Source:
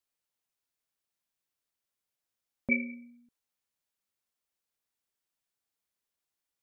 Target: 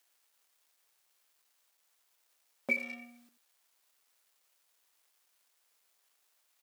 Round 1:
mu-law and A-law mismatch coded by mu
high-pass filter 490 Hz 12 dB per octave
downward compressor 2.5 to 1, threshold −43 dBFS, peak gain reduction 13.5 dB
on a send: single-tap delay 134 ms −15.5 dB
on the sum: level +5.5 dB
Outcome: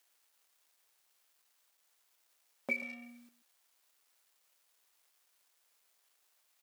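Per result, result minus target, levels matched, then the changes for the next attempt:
echo 49 ms late; downward compressor: peak gain reduction +4 dB
change: single-tap delay 85 ms −15.5 dB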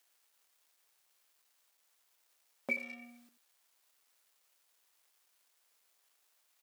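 downward compressor: peak gain reduction +4 dB
change: downward compressor 2.5 to 1, threshold −36.5 dBFS, peak gain reduction 9.5 dB

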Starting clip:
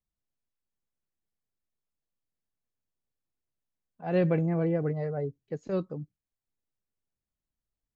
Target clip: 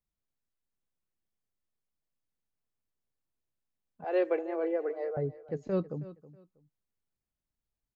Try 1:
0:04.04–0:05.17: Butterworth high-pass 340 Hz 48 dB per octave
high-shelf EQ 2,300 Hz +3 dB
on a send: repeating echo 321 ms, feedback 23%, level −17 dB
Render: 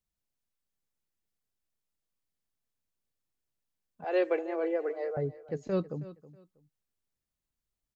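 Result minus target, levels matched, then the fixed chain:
4,000 Hz band +5.0 dB
0:04.04–0:05.17: Butterworth high-pass 340 Hz 48 dB per octave
high-shelf EQ 2,300 Hz −5 dB
on a send: repeating echo 321 ms, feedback 23%, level −17 dB

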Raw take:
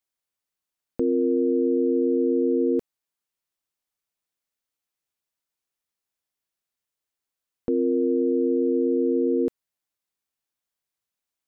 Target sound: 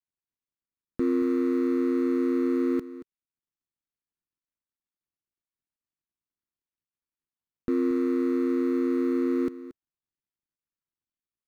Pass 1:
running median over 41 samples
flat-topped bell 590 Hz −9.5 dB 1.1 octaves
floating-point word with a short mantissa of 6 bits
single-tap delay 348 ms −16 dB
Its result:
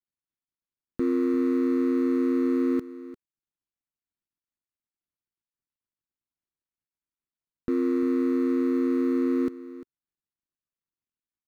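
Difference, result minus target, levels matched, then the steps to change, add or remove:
echo 120 ms late
change: single-tap delay 228 ms −16 dB

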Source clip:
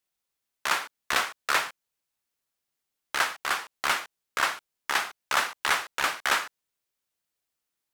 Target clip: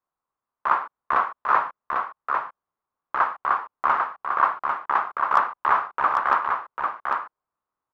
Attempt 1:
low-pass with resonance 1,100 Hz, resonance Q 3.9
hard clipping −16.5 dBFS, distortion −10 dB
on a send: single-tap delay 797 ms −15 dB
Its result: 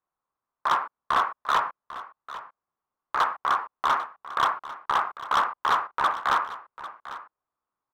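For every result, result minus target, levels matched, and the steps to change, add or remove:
hard clipping: distortion +25 dB; echo-to-direct −10.5 dB
change: hard clipping −7 dBFS, distortion −35 dB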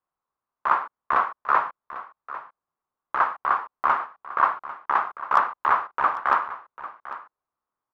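echo-to-direct −10.5 dB
change: single-tap delay 797 ms −4.5 dB

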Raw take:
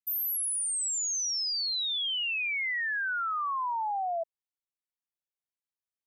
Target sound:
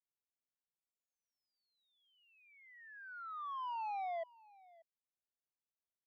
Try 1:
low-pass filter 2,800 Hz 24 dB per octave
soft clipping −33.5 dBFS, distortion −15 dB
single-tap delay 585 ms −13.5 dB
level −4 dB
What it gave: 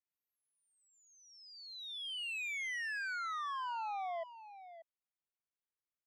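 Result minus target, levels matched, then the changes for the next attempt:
2,000 Hz band +10.5 dB; echo-to-direct +9.5 dB
change: low-pass filter 970 Hz 24 dB per octave
change: single-tap delay 585 ms −23 dB

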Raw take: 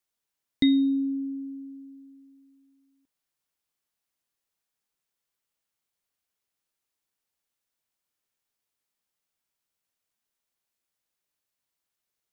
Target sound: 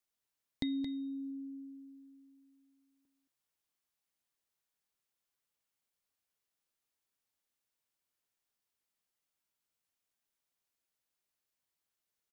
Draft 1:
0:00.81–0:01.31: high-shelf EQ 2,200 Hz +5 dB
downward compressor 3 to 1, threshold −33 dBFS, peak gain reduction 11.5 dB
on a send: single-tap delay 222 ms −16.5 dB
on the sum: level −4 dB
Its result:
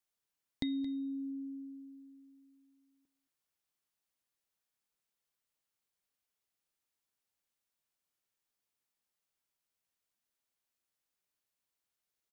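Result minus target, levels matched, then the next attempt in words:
echo-to-direct −7 dB
0:00.81–0:01.31: high-shelf EQ 2,200 Hz +5 dB
downward compressor 3 to 1, threshold −33 dBFS, peak gain reduction 11.5 dB
on a send: single-tap delay 222 ms −9.5 dB
on the sum: level −4 dB

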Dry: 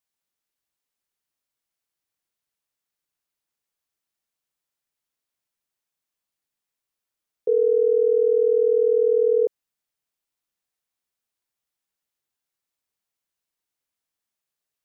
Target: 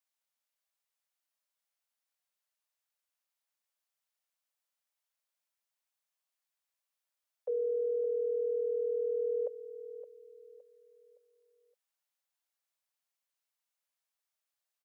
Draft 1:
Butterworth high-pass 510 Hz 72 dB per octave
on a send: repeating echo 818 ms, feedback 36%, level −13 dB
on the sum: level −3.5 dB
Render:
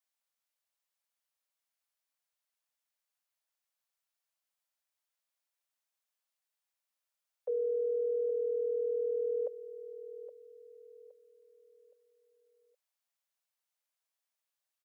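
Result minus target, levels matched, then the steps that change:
echo 252 ms late
change: repeating echo 566 ms, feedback 36%, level −13 dB

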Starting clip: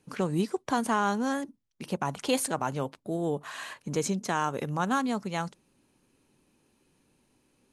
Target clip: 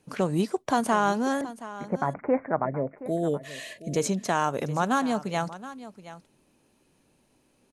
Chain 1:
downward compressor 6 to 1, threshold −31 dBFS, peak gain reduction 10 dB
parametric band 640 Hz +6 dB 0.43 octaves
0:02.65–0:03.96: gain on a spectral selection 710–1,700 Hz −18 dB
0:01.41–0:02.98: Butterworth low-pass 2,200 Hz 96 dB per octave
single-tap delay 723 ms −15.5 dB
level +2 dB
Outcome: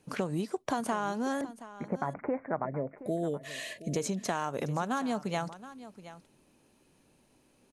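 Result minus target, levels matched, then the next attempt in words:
downward compressor: peak gain reduction +10 dB
parametric band 640 Hz +6 dB 0.43 octaves
0:02.65–0:03.96: gain on a spectral selection 710–1,700 Hz −18 dB
0:01.41–0:02.98: Butterworth low-pass 2,200 Hz 96 dB per octave
single-tap delay 723 ms −15.5 dB
level +2 dB

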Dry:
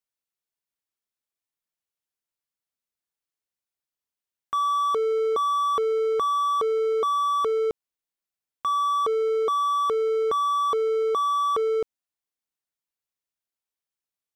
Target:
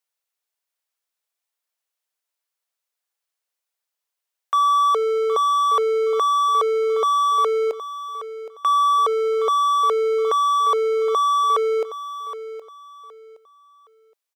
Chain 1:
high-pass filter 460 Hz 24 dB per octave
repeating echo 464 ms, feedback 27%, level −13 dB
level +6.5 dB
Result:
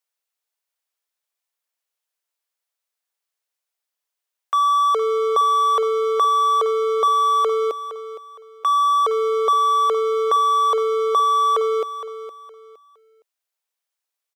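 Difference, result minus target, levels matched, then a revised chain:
echo 304 ms early
high-pass filter 460 Hz 24 dB per octave
repeating echo 768 ms, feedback 27%, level −13 dB
level +6.5 dB

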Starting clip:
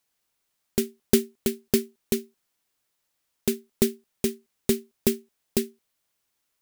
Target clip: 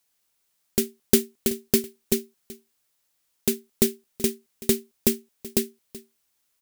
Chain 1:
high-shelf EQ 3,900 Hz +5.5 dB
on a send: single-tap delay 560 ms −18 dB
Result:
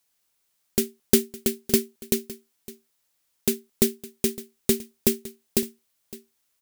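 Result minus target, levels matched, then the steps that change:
echo 181 ms late
change: single-tap delay 379 ms −18 dB

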